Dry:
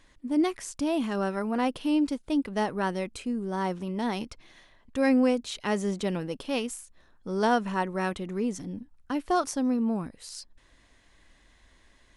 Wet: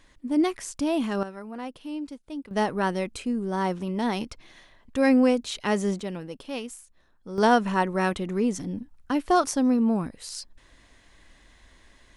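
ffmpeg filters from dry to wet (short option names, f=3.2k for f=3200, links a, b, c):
-af "asetnsamples=n=441:p=0,asendcmd='1.23 volume volume -9dB;2.51 volume volume 3dB;6 volume volume -4dB;7.38 volume volume 4.5dB',volume=2dB"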